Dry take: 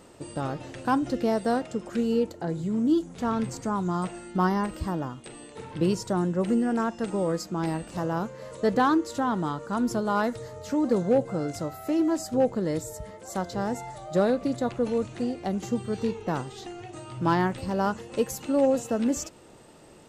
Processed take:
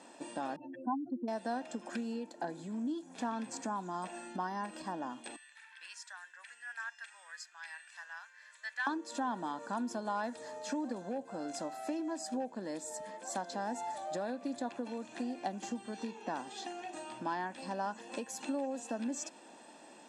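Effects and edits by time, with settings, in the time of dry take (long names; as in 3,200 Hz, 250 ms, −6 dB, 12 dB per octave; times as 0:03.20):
0:00.56–0:01.28: expanding power law on the bin magnitudes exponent 3.2
0:05.36–0:08.87: four-pole ladder high-pass 1,500 Hz, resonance 55%
whole clip: downward compressor, threshold −31 dBFS; elliptic band-pass filter 250–9,400 Hz, stop band 40 dB; comb filter 1.2 ms, depth 58%; level −1.5 dB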